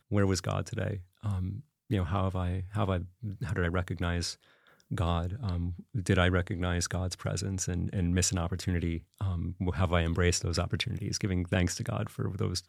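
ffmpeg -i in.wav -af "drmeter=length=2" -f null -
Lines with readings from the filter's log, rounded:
Channel 1: DR: 15.4
Overall DR: 15.4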